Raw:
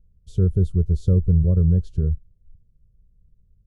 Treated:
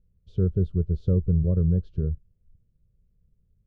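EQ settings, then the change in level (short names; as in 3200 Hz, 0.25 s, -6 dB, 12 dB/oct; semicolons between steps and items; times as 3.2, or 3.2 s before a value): air absorption 300 m; low shelf 98 Hz -10 dB; 0.0 dB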